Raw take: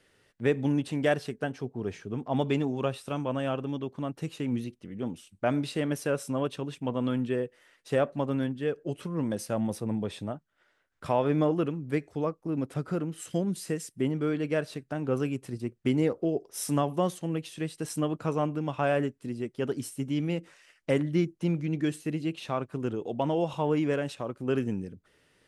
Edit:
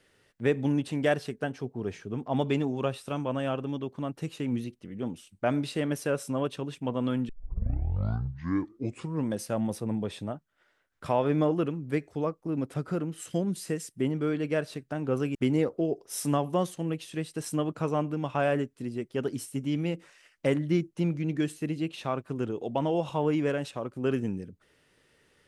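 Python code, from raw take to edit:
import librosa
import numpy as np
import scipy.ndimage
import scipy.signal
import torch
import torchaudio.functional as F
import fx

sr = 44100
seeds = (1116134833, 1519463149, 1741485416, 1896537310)

y = fx.edit(x, sr, fx.tape_start(start_s=7.29, length_s=1.96),
    fx.cut(start_s=15.35, length_s=0.44), tone=tone)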